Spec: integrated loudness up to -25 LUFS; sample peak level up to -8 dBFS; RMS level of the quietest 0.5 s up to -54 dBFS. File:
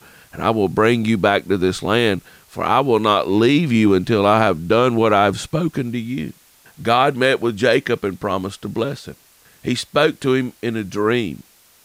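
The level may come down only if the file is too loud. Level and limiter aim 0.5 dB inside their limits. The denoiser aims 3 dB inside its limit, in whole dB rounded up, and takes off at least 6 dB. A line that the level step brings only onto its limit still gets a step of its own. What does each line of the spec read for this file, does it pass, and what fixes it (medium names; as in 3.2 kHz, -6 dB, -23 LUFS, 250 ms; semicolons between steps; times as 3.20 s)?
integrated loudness -18.0 LUFS: fail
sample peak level -4.0 dBFS: fail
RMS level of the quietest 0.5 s -52 dBFS: fail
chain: trim -7.5 dB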